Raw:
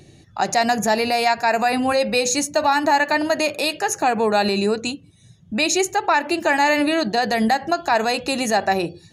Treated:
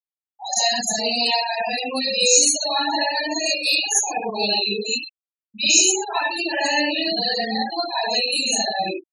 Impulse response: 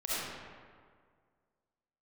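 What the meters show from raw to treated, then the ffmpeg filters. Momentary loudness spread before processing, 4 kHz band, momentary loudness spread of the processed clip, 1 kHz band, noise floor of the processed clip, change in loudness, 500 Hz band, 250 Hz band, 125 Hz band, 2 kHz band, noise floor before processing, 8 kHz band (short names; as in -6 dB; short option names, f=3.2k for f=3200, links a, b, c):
5 LU, +6.5 dB, 10 LU, -6.0 dB, under -85 dBFS, 0.0 dB, -5.5 dB, -6.5 dB, n/a, -2.5 dB, -50 dBFS, +8.5 dB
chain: -filter_complex "[1:a]atrim=start_sample=2205,afade=t=out:st=0.39:d=0.01,atrim=end_sample=17640,asetrate=70560,aresample=44100[a];[0:a][a]afir=irnorm=-1:irlink=0,aexciter=amount=5.9:drive=2.5:freq=2.1k,afftfilt=real='re*gte(hypot(re,im),0.398)':imag='im*gte(hypot(re,im),0.398)':win_size=1024:overlap=0.75,asuperstop=centerf=2200:order=4:qfactor=3.5,volume=-7.5dB"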